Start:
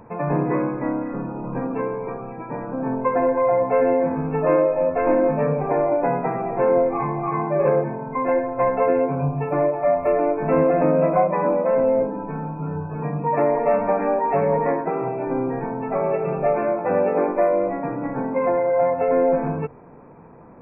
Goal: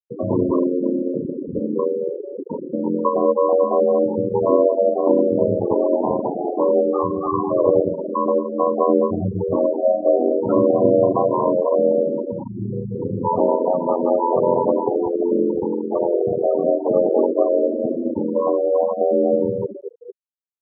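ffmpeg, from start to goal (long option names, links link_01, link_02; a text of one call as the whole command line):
ffmpeg -i in.wav -filter_complex "[0:a]highpass=120,equalizer=frequency=160:width_type=q:width=4:gain=-3,equalizer=frequency=360:width_type=q:width=4:gain=5,equalizer=frequency=720:width_type=q:width=4:gain=-6,lowpass=frequency=2100:width=0.5412,lowpass=frequency=2100:width=1.3066,aecho=1:1:225|450|675|900|1125:0.355|0.17|0.0817|0.0392|0.0188,aeval=exprs='val(0)*sin(2*PI*43*n/s)':channel_layout=same,asplit=2[link_01][link_02];[link_02]acompressor=threshold=-33dB:ratio=6,volume=-1dB[link_03];[link_01][link_03]amix=inputs=2:normalize=0,afftfilt=real='re*gte(hypot(re,im),0.158)':imag='im*gte(hypot(re,im),0.158)':win_size=1024:overlap=0.75,volume=4dB" out.wav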